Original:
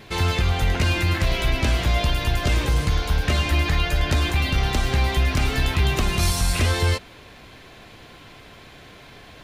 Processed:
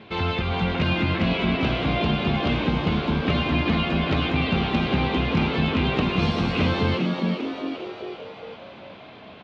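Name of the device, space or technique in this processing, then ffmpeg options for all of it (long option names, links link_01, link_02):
frequency-shifting delay pedal into a guitar cabinet: -filter_complex "[0:a]asplit=8[link_01][link_02][link_03][link_04][link_05][link_06][link_07][link_08];[link_02]adelay=398,afreqshift=92,volume=-6.5dB[link_09];[link_03]adelay=796,afreqshift=184,volume=-11.4dB[link_10];[link_04]adelay=1194,afreqshift=276,volume=-16.3dB[link_11];[link_05]adelay=1592,afreqshift=368,volume=-21.1dB[link_12];[link_06]adelay=1990,afreqshift=460,volume=-26dB[link_13];[link_07]adelay=2388,afreqshift=552,volume=-30.9dB[link_14];[link_08]adelay=2786,afreqshift=644,volume=-35.8dB[link_15];[link_01][link_09][link_10][link_11][link_12][link_13][link_14][link_15]amix=inputs=8:normalize=0,highpass=110,equalizer=frequency=130:width_type=q:width=4:gain=-4,equalizer=frequency=210:width_type=q:width=4:gain=5,equalizer=frequency=1800:width_type=q:width=4:gain=-7,lowpass=frequency=3500:width=0.5412,lowpass=frequency=3500:width=1.3066"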